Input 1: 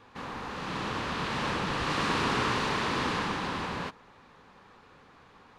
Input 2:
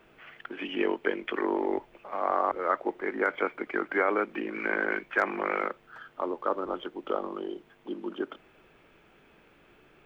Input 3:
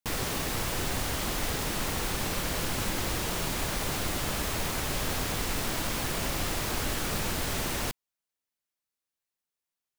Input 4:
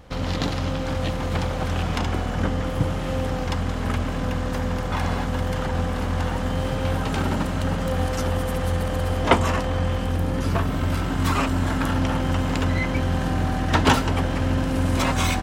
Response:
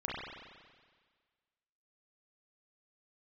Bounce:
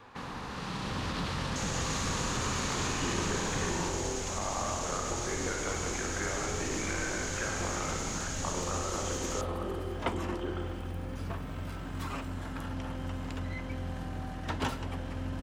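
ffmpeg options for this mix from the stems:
-filter_complex "[0:a]volume=1.26,asplit=2[s0][s1];[s1]volume=0.15[s2];[1:a]acompressor=threshold=0.0282:ratio=6,adelay=2250,volume=1.26,asplit=2[s3][s4];[s4]volume=0.355[s5];[2:a]lowpass=f=6700:t=q:w=7.6,alimiter=limit=0.119:level=0:latency=1:release=38,adelay=1500,volume=0.211,asplit=2[s6][s7];[s7]volume=0.531[s8];[3:a]adelay=750,volume=0.15,asplit=2[s9][s10];[s10]volume=0.141[s11];[s0][s3]amix=inputs=2:normalize=0,acrossover=split=290|3000[s12][s13][s14];[s13]acompressor=threshold=0.00708:ratio=6[s15];[s12][s15][s14]amix=inputs=3:normalize=0,alimiter=level_in=1.5:limit=0.0631:level=0:latency=1:release=20,volume=0.668,volume=1[s16];[4:a]atrim=start_sample=2205[s17];[s2][s5][s8][s11]amix=inputs=4:normalize=0[s18];[s18][s17]afir=irnorm=-1:irlink=0[s19];[s6][s9][s16][s19]amix=inputs=4:normalize=0"

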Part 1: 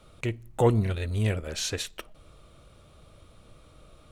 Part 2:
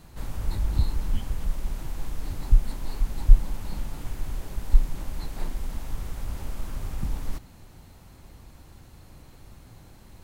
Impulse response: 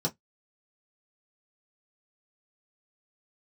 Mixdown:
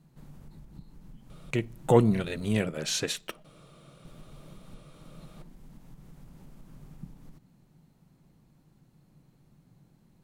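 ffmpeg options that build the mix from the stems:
-filter_complex "[0:a]adelay=1300,volume=1.12[s0];[1:a]lowshelf=f=370:g=10,acompressor=threshold=0.158:ratio=12,volume=0.126,asplit=3[s1][s2][s3];[s1]atrim=end=2.59,asetpts=PTS-STARTPTS,afade=t=out:st=2.586:d=0.004:c=hsin[s4];[s2]atrim=start=2.59:end=4.05,asetpts=PTS-STARTPTS,volume=0[s5];[s3]atrim=start=4.05,asetpts=PTS-STARTPTS,afade=t=in:d=0.004:c=hsin[s6];[s4][s5][s6]concat=n=3:v=0:a=1[s7];[s0][s7]amix=inputs=2:normalize=0,lowshelf=f=110:t=q:w=3:g=-10.5"

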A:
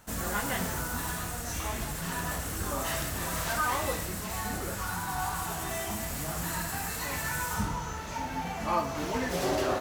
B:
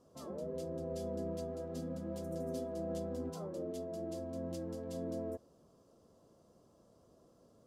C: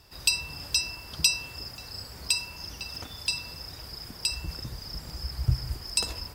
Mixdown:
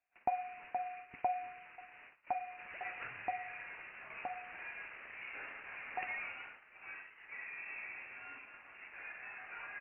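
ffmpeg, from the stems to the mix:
-filter_complex "[0:a]aeval=exprs='(tanh(39.8*val(0)+0.3)-tanh(0.3))/39.8':c=same,adelay=2500,volume=0.501[s0];[2:a]volume=0.794[s1];[s0][s1]amix=inputs=2:normalize=0,highpass=f=830:w=0.5412,highpass=f=830:w=1.3066,agate=range=0.0708:threshold=0.00501:ratio=16:detection=peak,lowpass=f=2900:t=q:w=0.5098,lowpass=f=2900:t=q:w=0.6013,lowpass=f=2900:t=q:w=0.9,lowpass=f=2900:t=q:w=2.563,afreqshift=-3400"

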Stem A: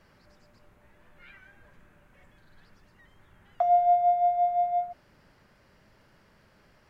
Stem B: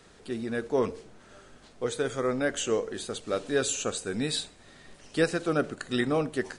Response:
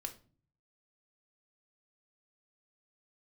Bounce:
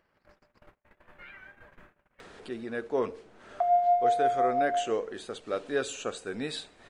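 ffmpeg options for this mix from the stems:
-filter_complex "[0:a]agate=range=0.00224:threshold=0.002:ratio=16:detection=peak,volume=0.794[s0];[1:a]adelay=2200,volume=0.841[s1];[s0][s1]amix=inputs=2:normalize=0,bass=f=250:g=-8,treble=f=4000:g=-10,acompressor=mode=upward:threshold=0.01:ratio=2.5"

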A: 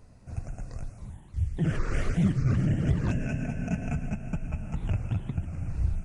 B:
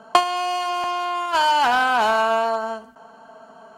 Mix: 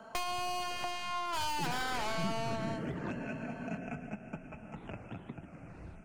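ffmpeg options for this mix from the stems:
-filter_complex "[0:a]acrossover=split=210 3100:gain=0.0708 1 0.224[s0][s1][s2];[s0][s1][s2]amix=inputs=3:normalize=0,volume=0.794[s3];[1:a]aeval=exprs='(tanh(17.8*val(0)+0.4)-tanh(0.4))/17.8':c=same,volume=0.596[s4];[s3][s4]amix=inputs=2:normalize=0,bandreject=f=88.6:t=h:w=4,bandreject=f=177.2:t=h:w=4,bandreject=f=265.8:t=h:w=4,bandreject=f=354.4:t=h:w=4,bandreject=f=443:t=h:w=4,bandreject=f=531.6:t=h:w=4,bandreject=f=620.2:t=h:w=4,bandreject=f=708.8:t=h:w=4,bandreject=f=797.4:t=h:w=4,bandreject=f=886:t=h:w=4,bandreject=f=974.6:t=h:w=4,bandreject=f=1063.2:t=h:w=4,bandreject=f=1151.8:t=h:w=4,bandreject=f=1240.4:t=h:w=4,bandreject=f=1329:t=h:w=4,bandreject=f=1417.6:t=h:w=4,bandreject=f=1506.2:t=h:w=4,bandreject=f=1594.8:t=h:w=4,acrossover=split=160|3000[s5][s6][s7];[s6]acompressor=threshold=0.02:ratio=6[s8];[s5][s8][s7]amix=inputs=3:normalize=0"

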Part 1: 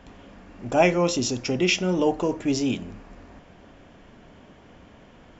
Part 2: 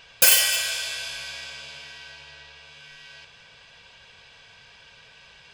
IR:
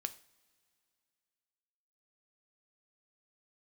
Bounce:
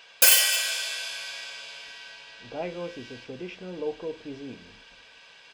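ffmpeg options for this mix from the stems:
-filter_complex "[0:a]agate=range=0.282:threshold=0.00708:ratio=16:detection=peak,lowpass=2300,equalizer=f=470:w=6.3:g=12,adelay=1800,volume=0.158[s0];[1:a]highpass=320,volume=0.891[s1];[s0][s1]amix=inputs=2:normalize=0"

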